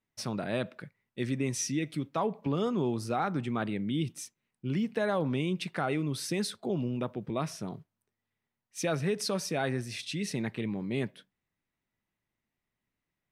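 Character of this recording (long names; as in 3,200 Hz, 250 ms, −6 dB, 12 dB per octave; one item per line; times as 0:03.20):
background noise floor −88 dBFS
spectral slope −5.0 dB per octave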